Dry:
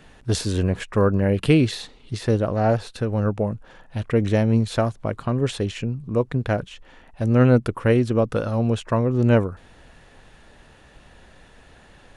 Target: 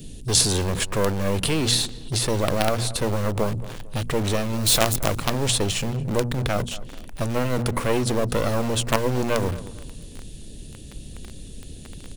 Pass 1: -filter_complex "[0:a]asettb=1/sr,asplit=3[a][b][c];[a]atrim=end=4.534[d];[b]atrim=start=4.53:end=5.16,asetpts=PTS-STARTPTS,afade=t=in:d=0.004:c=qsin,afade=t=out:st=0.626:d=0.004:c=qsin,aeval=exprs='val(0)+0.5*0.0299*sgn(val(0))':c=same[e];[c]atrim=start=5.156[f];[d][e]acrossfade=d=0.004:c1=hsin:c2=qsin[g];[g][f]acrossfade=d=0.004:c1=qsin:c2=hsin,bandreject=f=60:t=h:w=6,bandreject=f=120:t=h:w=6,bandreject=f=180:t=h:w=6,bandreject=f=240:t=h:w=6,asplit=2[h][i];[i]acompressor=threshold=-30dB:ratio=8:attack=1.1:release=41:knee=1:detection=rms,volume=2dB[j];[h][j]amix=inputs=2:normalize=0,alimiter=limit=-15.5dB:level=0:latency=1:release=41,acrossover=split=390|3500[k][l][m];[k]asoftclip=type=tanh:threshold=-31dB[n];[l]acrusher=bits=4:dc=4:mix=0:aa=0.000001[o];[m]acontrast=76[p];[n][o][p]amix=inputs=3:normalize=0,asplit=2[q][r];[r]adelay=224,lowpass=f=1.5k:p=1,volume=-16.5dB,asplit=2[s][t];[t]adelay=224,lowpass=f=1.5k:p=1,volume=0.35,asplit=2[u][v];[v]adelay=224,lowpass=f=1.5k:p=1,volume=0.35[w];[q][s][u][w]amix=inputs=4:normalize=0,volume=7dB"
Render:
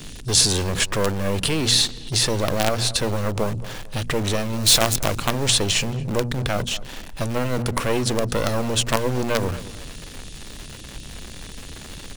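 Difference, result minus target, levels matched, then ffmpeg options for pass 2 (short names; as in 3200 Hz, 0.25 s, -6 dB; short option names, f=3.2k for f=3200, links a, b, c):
4000 Hz band +2.5 dB
-filter_complex "[0:a]asettb=1/sr,asplit=3[a][b][c];[a]atrim=end=4.534[d];[b]atrim=start=4.53:end=5.16,asetpts=PTS-STARTPTS,afade=t=in:d=0.004:c=qsin,afade=t=out:st=0.626:d=0.004:c=qsin,aeval=exprs='val(0)+0.5*0.0299*sgn(val(0))':c=same[e];[c]atrim=start=5.156[f];[d][e]acrossfade=d=0.004:c1=hsin:c2=qsin[g];[g][f]acrossfade=d=0.004:c1=qsin:c2=hsin,bandreject=f=60:t=h:w=6,bandreject=f=120:t=h:w=6,bandreject=f=180:t=h:w=6,bandreject=f=240:t=h:w=6,asplit=2[h][i];[i]acompressor=threshold=-30dB:ratio=8:attack=1.1:release=41:knee=1:detection=rms,asuperstop=centerf=3300:order=4:qfactor=0.53,volume=2dB[j];[h][j]amix=inputs=2:normalize=0,alimiter=limit=-15.5dB:level=0:latency=1:release=41,acrossover=split=390|3500[k][l][m];[k]asoftclip=type=tanh:threshold=-31dB[n];[l]acrusher=bits=4:dc=4:mix=0:aa=0.000001[o];[m]acontrast=76[p];[n][o][p]amix=inputs=3:normalize=0,asplit=2[q][r];[r]adelay=224,lowpass=f=1.5k:p=1,volume=-16.5dB,asplit=2[s][t];[t]adelay=224,lowpass=f=1.5k:p=1,volume=0.35,asplit=2[u][v];[v]adelay=224,lowpass=f=1.5k:p=1,volume=0.35[w];[q][s][u][w]amix=inputs=4:normalize=0,volume=7dB"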